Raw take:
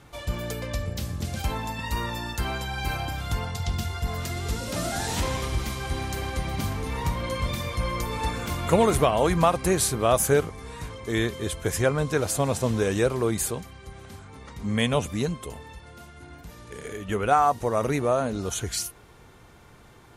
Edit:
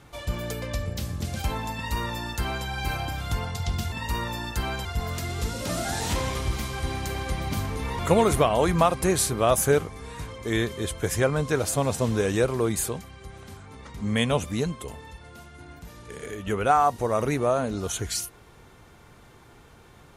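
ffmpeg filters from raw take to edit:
ffmpeg -i in.wav -filter_complex "[0:a]asplit=4[link_01][link_02][link_03][link_04];[link_01]atrim=end=3.922[link_05];[link_02]atrim=start=1.738:end=2.672[link_06];[link_03]atrim=start=3.918:end=7.062[link_07];[link_04]atrim=start=8.608[link_08];[link_05][link_06]acrossfade=duration=0.004:curve1=hsin:curve2=hsin[link_09];[link_09][link_07]acrossfade=duration=0.004:curve1=hsin:curve2=hsin[link_10];[link_10][link_08]acrossfade=duration=0.004:curve1=hsin:curve2=hsin" out.wav

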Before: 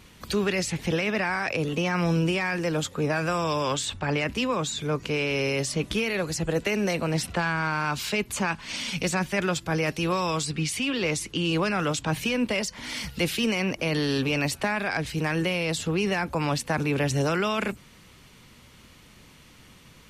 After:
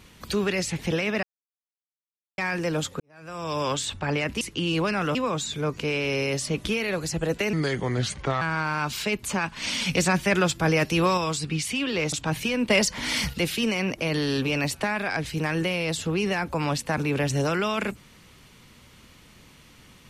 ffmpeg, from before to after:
ffmpeg -i in.wav -filter_complex "[0:a]asplit=13[link_01][link_02][link_03][link_04][link_05][link_06][link_07][link_08][link_09][link_10][link_11][link_12][link_13];[link_01]atrim=end=1.23,asetpts=PTS-STARTPTS,afade=type=out:start_time=1.226:duration=0.004:curve=hsin[link_14];[link_02]atrim=start=1.23:end=2.38,asetpts=PTS-STARTPTS,volume=0[link_15];[link_03]atrim=start=2.38:end=3,asetpts=PTS-STARTPTS,afade=type=in:duration=0.004:curve=hsin,afade=type=out:start_time=0.616:duration=0.004:curve=hsin[link_16];[link_04]atrim=start=3:end=4.412,asetpts=PTS-STARTPTS,afade=type=in:duration=0.61:curve=qua[link_17];[link_05]atrim=start=11.188:end=11.932[link_18];[link_06]atrim=start=4.408:end=6.794[link_19];[link_07]atrim=start=6.79:end=7.48,asetpts=PTS-STARTPTS,asetrate=34398,aresample=44100[link_20];[link_08]atrim=start=7.476:end=8.632[link_21];[link_09]atrim=start=8.628:end=10.242,asetpts=PTS-STARTPTS,volume=4dB[link_22];[link_10]atrim=start=10.238:end=11.192[link_23];[link_11]atrim=start=11.928:end=12.512[link_24];[link_12]atrim=start=12.508:end=13.142,asetpts=PTS-STARTPTS,volume=7dB[link_25];[link_13]atrim=start=13.138[link_26];[link_14][link_15][link_16][link_17]concat=n=4:v=0:a=1[link_27];[link_27][link_18]acrossfade=duration=0.004:curve1=hsin:curve2=hsin[link_28];[link_28][link_19]acrossfade=duration=0.004:curve1=hsin:curve2=hsin[link_29];[link_29][link_20]acrossfade=duration=0.004:curve1=hsin:curve2=hsin[link_30];[link_30][link_21]acrossfade=duration=0.004:curve1=hsin:curve2=hsin[link_31];[link_31][link_22]acrossfade=duration=0.004:curve1=hsin:curve2=hsin[link_32];[link_32][link_23]acrossfade=duration=0.004:curve1=hsin:curve2=hsin[link_33];[link_33][link_24]acrossfade=duration=0.004:curve1=hsin:curve2=hsin[link_34];[link_34][link_25]acrossfade=duration=0.004:curve1=hsin:curve2=hsin[link_35];[link_35][link_26]acrossfade=duration=0.004:curve1=hsin:curve2=hsin" out.wav

